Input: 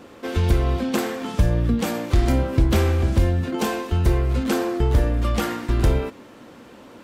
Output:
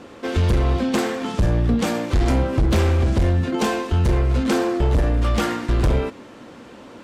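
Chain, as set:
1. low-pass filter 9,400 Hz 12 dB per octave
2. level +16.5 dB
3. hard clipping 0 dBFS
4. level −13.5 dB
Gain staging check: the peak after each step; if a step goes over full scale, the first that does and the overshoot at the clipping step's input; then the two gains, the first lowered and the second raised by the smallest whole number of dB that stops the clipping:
−8.0, +8.5, 0.0, −13.5 dBFS
step 2, 8.5 dB
step 2 +7.5 dB, step 4 −4.5 dB

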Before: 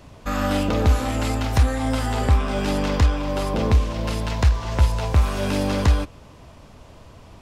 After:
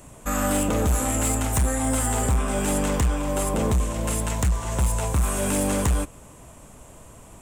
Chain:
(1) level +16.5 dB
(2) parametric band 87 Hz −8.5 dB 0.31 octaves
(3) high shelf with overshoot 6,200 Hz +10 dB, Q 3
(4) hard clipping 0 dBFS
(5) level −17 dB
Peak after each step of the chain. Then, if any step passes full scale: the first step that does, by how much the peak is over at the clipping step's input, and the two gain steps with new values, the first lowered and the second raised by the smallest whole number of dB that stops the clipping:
+10.0, +9.5, +10.0, 0.0, −17.0 dBFS
step 1, 10.0 dB
step 1 +6.5 dB, step 5 −7 dB

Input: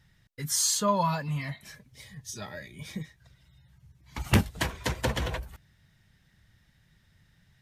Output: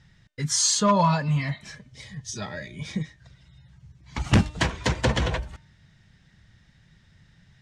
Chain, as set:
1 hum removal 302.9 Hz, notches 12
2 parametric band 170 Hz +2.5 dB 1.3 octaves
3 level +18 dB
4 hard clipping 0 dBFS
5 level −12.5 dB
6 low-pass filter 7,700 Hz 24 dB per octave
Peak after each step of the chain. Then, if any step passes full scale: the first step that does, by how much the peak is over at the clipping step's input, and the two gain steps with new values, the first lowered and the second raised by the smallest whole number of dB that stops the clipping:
−11.5, −10.0, +8.0, 0.0, −12.5, −10.5 dBFS
step 3, 8.0 dB
step 3 +10 dB, step 5 −4.5 dB

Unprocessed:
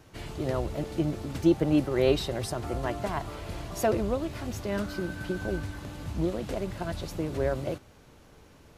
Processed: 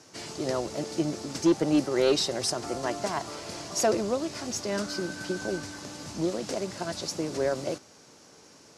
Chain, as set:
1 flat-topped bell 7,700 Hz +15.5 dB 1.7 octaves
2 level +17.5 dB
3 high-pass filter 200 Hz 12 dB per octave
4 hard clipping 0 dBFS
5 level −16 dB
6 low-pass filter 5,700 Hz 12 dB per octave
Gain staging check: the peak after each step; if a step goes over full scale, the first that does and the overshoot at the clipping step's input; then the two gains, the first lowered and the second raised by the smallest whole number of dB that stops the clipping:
−8.0, +9.5, +9.0, 0.0, −16.0, −15.5 dBFS
step 2, 9.0 dB
step 2 +8.5 dB, step 5 −7 dB

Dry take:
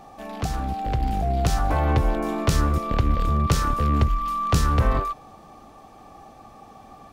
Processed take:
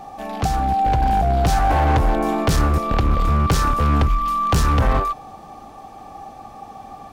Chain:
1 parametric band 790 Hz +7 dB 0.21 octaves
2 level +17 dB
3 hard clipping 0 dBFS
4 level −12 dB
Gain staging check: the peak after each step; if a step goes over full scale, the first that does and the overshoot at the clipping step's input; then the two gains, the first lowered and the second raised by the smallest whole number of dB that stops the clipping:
−7.0, +10.0, 0.0, −12.0 dBFS
step 2, 10.0 dB
step 2 +7 dB, step 4 −2 dB

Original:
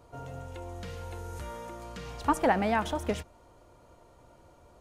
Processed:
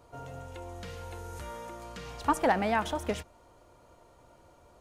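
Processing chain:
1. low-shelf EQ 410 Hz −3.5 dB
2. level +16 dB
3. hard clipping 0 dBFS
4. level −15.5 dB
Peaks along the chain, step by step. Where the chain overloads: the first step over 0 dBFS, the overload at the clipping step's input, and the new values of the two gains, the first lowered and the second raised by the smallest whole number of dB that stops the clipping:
−12.5, +3.5, 0.0, −15.5 dBFS
step 2, 3.5 dB
step 2 +12 dB, step 4 −11.5 dB

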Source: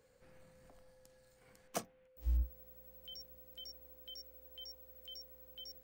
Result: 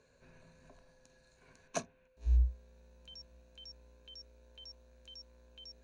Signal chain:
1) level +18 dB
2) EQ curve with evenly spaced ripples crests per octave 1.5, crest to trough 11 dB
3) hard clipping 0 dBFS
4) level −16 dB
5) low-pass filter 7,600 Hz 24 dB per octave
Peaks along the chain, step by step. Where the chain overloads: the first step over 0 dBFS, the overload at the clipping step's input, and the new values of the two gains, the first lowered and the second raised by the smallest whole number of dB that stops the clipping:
−6.0, −4.0, −4.0, −20.0, −20.5 dBFS
no step passes full scale

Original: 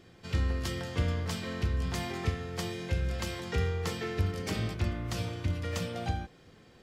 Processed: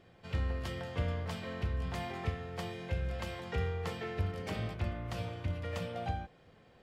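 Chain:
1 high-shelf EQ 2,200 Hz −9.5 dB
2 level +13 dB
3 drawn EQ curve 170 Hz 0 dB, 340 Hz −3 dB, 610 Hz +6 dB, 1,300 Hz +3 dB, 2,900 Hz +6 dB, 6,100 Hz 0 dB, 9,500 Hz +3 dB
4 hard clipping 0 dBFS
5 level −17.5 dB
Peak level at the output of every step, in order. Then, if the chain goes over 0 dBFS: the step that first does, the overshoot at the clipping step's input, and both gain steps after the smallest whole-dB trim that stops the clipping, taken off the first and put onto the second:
−17.5, −4.5, −3.5, −3.5, −21.0 dBFS
no step passes full scale

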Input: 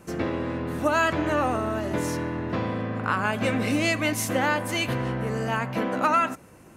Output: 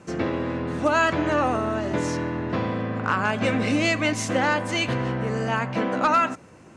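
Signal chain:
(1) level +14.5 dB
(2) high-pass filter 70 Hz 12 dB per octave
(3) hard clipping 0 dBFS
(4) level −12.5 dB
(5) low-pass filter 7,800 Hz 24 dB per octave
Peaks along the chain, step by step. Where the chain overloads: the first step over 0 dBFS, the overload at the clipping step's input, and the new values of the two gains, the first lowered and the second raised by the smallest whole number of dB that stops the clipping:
+3.5, +4.0, 0.0, −12.5, −11.5 dBFS
step 1, 4.0 dB
step 1 +10.5 dB, step 4 −8.5 dB

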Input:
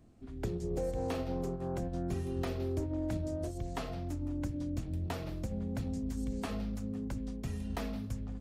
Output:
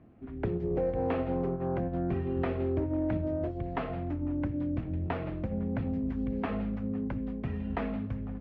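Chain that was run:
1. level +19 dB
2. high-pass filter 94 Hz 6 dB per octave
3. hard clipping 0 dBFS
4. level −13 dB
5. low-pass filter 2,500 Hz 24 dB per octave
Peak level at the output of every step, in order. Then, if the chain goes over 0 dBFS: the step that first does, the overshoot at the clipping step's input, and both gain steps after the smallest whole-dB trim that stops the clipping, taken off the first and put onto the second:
−3.5, −4.0, −4.0, −17.0, −18.0 dBFS
no step passes full scale

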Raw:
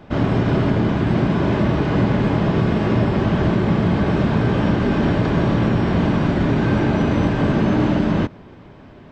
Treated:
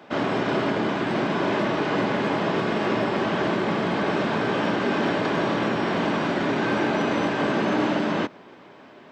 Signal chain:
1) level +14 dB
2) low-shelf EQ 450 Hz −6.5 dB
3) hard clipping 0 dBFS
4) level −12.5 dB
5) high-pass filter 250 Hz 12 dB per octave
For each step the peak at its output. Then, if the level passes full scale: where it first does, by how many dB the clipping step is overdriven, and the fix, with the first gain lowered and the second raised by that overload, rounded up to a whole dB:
+8.0, +4.0, 0.0, −12.5, −10.5 dBFS
step 1, 4.0 dB
step 1 +10 dB, step 4 −8.5 dB

